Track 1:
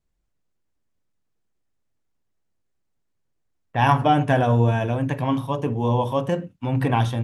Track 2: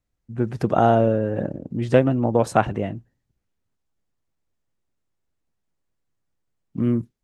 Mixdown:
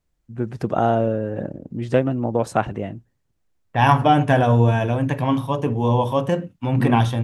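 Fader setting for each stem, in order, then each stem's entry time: +2.5, -2.0 dB; 0.00, 0.00 s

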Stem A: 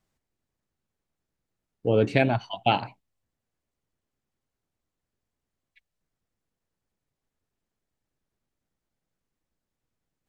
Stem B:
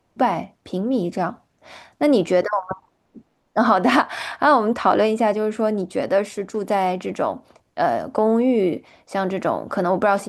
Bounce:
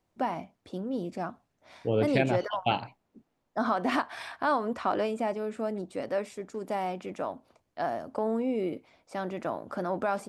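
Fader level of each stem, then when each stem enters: -5.0, -11.5 dB; 0.00, 0.00 s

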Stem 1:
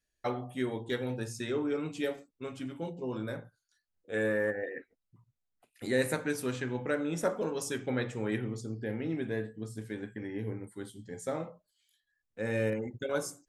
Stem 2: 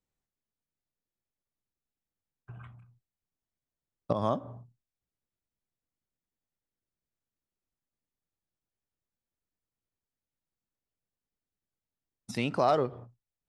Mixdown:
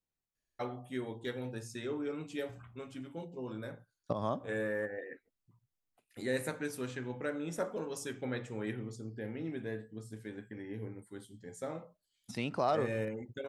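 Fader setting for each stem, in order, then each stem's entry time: -5.5, -5.5 dB; 0.35, 0.00 s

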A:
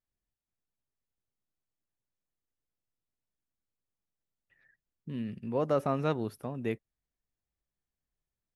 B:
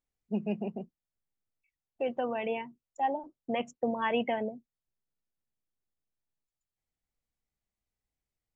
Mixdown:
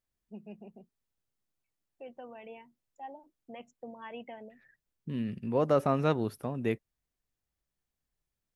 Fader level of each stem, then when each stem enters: +2.5, -14.5 dB; 0.00, 0.00 s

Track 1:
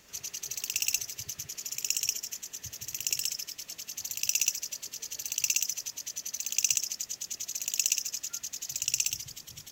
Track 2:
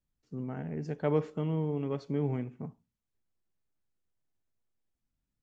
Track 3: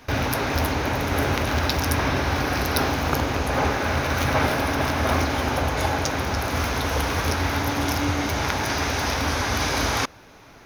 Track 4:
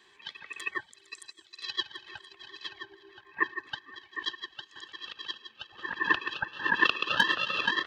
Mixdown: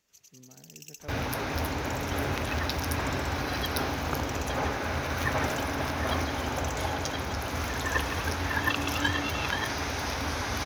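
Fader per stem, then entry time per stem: -18.0, -17.0, -7.5, -5.0 dB; 0.00, 0.00, 1.00, 1.85 s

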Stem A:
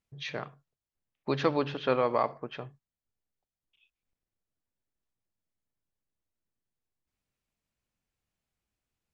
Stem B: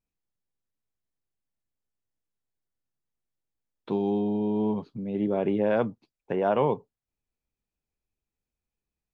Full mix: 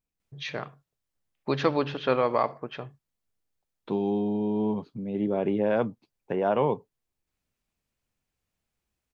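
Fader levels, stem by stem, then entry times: +2.5, -0.5 dB; 0.20, 0.00 s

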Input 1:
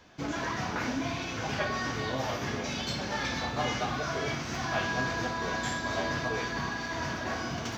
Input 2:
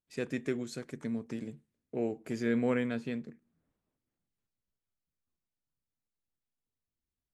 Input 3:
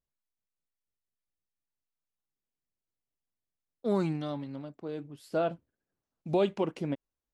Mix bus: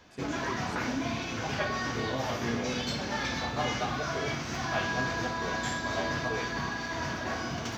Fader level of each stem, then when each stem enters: 0.0 dB, -7.0 dB, off; 0.00 s, 0.00 s, off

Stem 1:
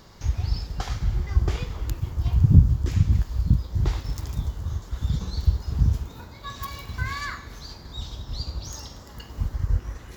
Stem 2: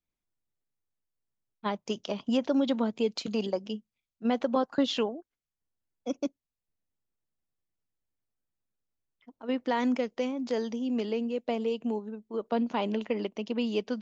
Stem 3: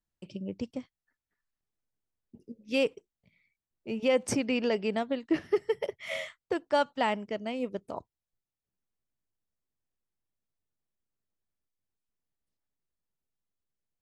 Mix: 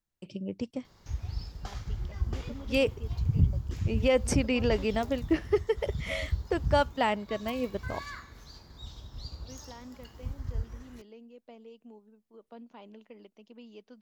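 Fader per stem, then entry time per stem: -10.0, -20.0, +1.0 dB; 0.85, 0.00, 0.00 s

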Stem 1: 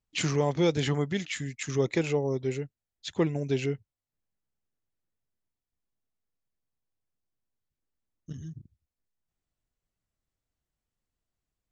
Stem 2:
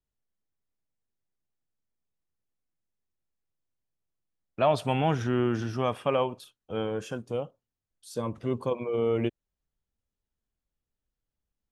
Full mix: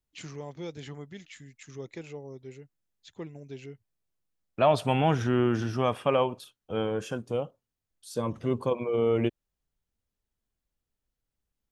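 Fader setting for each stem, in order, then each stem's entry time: -14.0, +1.5 dB; 0.00, 0.00 s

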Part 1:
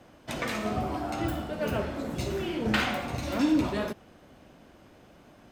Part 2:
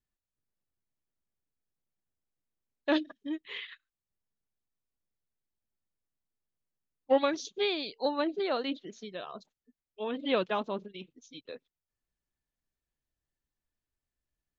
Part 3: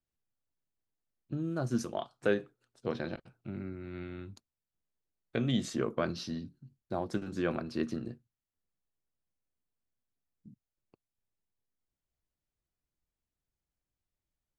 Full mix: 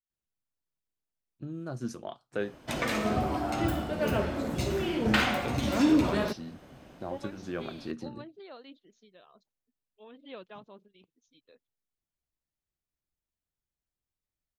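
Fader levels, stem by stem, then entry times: +1.5, -16.5, -4.0 dB; 2.40, 0.00, 0.10 s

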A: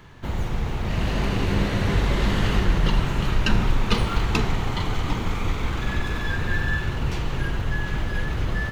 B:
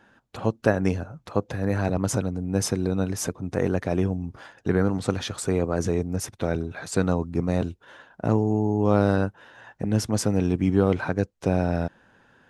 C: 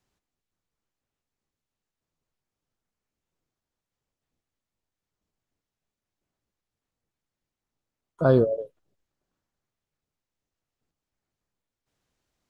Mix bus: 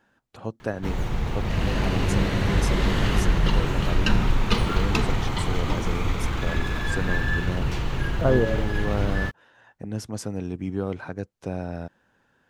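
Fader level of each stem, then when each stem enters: -0.5, -8.0, -2.0 dB; 0.60, 0.00, 0.00 s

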